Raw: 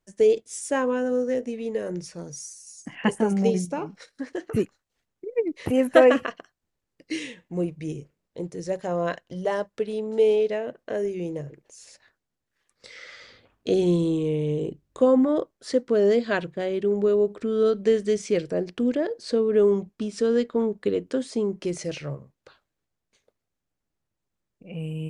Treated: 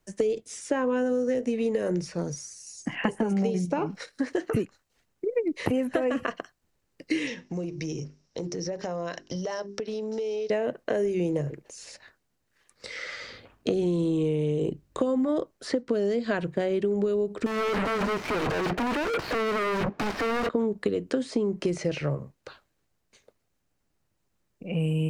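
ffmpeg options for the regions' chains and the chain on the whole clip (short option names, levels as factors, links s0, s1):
-filter_complex "[0:a]asettb=1/sr,asplit=3[s0][s1][s2];[s0]atrim=end=7.274[s3];[s1]atrim=start=7.27:end=10.5,asetpts=PTS-STARTPTS,afade=t=in:d=0.004:c=qsin,afade=t=out:st=3.226:d=0.004:c=qsin,bandreject=f=50:t=h:w=6,bandreject=f=100:t=h:w=6,bandreject=f=150:t=h:w=6,bandreject=f=200:t=h:w=6,bandreject=f=250:t=h:w=6,bandreject=f=300:t=h:w=6,bandreject=f=350:t=h:w=6,bandreject=f=400:t=h:w=6,acompressor=threshold=0.0158:ratio=10:attack=3.2:release=140:knee=1:detection=peak,lowpass=f=5600:t=q:w=9[s4];[s2]atrim=start=10.496[s5];[s3][s4]acrossfade=d=0.004:c1=hsin:c2=qsin[s6];[s6][s5]acrossfade=d=0.004:c1=qsin:c2=hsin,asettb=1/sr,asplit=3[s7][s8][s9];[s7]atrim=end=17.464[s10];[s8]atrim=start=17.46:end=20.49,asetpts=PTS-STARTPTS,afade=t=in:d=0.004:c=qsin,afade=t=out:st=3.026:d=0.004:c=qsin,asplit=2[s11][s12];[s12]highpass=f=720:p=1,volume=100,asoftclip=type=tanh:threshold=0.316[s13];[s11][s13]amix=inputs=2:normalize=0,lowpass=f=4300:p=1,volume=0.501,aeval=exprs='0.0447*(abs(mod(val(0)/0.0447+3,4)-2)-1)':c=same,adynamicsmooth=sensitivity=7.5:basefreq=990[s14];[s9]atrim=start=20.486[s15];[s10][s14]acrossfade=d=0.004:c1=hsin:c2=qsin[s16];[s16][s15]acrossfade=d=0.004:c1=qsin:c2=hsin,acrossover=split=210|2600|5500[s17][s18][s19][s20];[s17]acompressor=threshold=0.0251:ratio=4[s21];[s18]acompressor=threshold=0.0501:ratio=4[s22];[s19]acompressor=threshold=0.00282:ratio=4[s23];[s20]acompressor=threshold=0.00126:ratio=4[s24];[s21][s22][s23][s24]amix=inputs=4:normalize=0,bandreject=f=3400:w=24,acompressor=threshold=0.0316:ratio=6,volume=2.37"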